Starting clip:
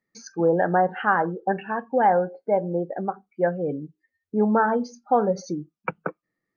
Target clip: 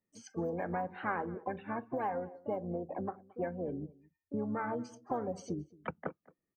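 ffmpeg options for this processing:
-filter_complex "[0:a]equalizer=f=2800:t=o:w=2.7:g=-11.5,acrossover=split=1500[s0][s1];[s0]acompressor=threshold=0.0316:ratio=6[s2];[s2][s1]amix=inputs=2:normalize=0,asplit=3[s3][s4][s5];[s4]asetrate=22050,aresample=44100,atempo=2,volume=0.251[s6];[s5]asetrate=58866,aresample=44100,atempo=0.749154,volume=0.316[s7];[s3][s6][s7]amix=inputs=3:normalize=0,asplit=2[s8][s9];[s9]adelay=221.6,volume=0.0708,highshelf=f=4000:g=-4.99[s10];[s8][s10]amix=inputs=2:normalize=0,volume=0.596"

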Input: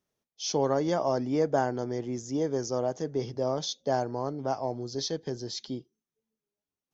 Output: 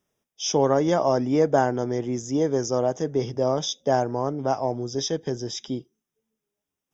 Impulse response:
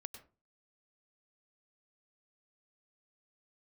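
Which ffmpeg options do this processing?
-af "asuperstop=centerf=4300:order=8:qfactor=4.5,volume=2"

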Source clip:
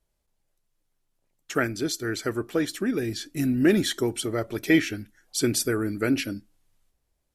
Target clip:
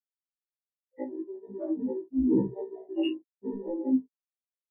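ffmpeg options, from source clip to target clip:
-filter_complex "[0:a]afftfilt=real='re':imag='-im':win_size=8192:overlap=0.75,flanger=delay=16:depth=6.9:speed=0.67,highpass=150,lowpass=2900,afreqshift=-100,asplit=2[s0][s1];[s1]acompressor=threshold=0.00562:ratio=5,volume=1[s2];[s0][s2]amix=inputs=2:normalize=0,bandreject=f=530:w=12,asetrate=68796,aresample=44100,afftfilt=real='re*gte(hypot(re,im),0.158)':imag='im*gte(hypot(re,im),0.158)':win_size=1024:overlap=0.75,acontrast=26,afwtdn=0.0141,aecho=1:1:19|51:0.631|0.211,afftfilt=real='re*1.73*eq(mod(b,3),0)':imag='im*1.73*eq(mod(b,3),0)':win_size=2048:overlap=0.75"

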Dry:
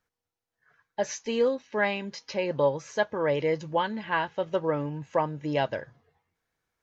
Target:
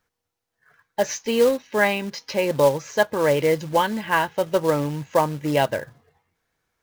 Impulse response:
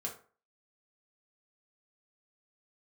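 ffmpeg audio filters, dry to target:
-af "acrusher=bits=4:mode=log:mix=0:aa=0.000001,volume=2.11"

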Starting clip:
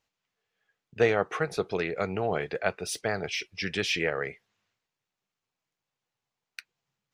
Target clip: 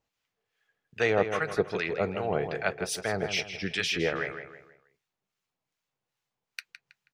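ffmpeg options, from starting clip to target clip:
-filter_complex "[0:a]acrossover=split=1000[s0][s1];[s0]aeval=exprs='val(0)*(1-0.7/2+0.7/2*cos(2*PI*2.5*n/s))':c=same[s2];[s1]aeval=exprs='val(0)*(1-0.7/2-0.7/2*cos(2*PI*2.5*n/s))':c=same[s3];[s2][s3]amix=inputs=2:normalize=0,asplit=2[s4][s5];[s5]adelay=161,lowpass=f=3300:p=1,volume=0.398,asplit=2[s6][s7];[s7]adelay=161,lowpass=f=3300:p=1,volume=0.39,asplit=2[s8][s9];[s9]adelay=161,lowpass=f=3300:p=1,volume=0.39,asplit=2[s10][s11];[s11]adelay=161,lowpass=f=3300:p=1,volume=0.39[s12];[s4][s6][s8][s10][s12]amix=inputs=5:normalize=0,volume=1.41"

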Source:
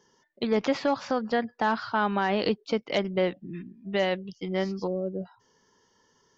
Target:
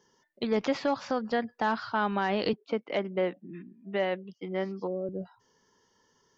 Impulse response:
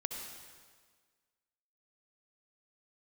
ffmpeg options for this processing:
-filter_complex "[0:a]asettb=1/sr,asplit=3[s0][s1][s2];[s0]atrim=end=2.534[s3];[s1]atrim=start=2.53:end=5.09,asetpts=PTS-STARTPTS,afade=t=in:d=0.004:c=qsin,afade=t=out:st=2.556:d=0.004:c=qsin,acrossover=split=160 2900:gain=0.0708 1 0.178[s4][s5][s6];[s4][s5][s6]amix=inputs=3:normalize=0[s7];[s2]atrim=start=5.086[s8];[s3][s7]acrossfade=d=0.004:c1=hsin:c2=qsin[s9];[s9][s8]acrossfade=d=0.004:c1=qsin:c2=hsin,volume=0.75"

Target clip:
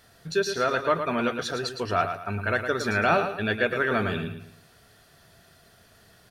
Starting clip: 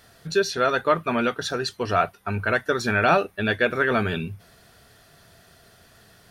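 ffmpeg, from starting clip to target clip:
-af "aecho=1:1:111|222|333|444:0.398|0.131|0.0434|0.0143,volume=0.668"

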